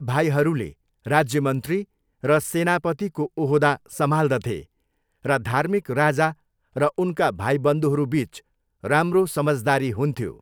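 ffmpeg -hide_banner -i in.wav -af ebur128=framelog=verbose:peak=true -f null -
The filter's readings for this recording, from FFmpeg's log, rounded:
Integrated loudness:
  I:         -22.4 LUFS
  Threshold: -32.9 LUFS
Loudness range:
  LRA:         1.3 LU
  Threshold: -43.1 LUFS
  LRA low:   -23.7 LUFS
  LRA high:  -22.5 LUFS
True peak:
  Peak:       -2.8 dBFS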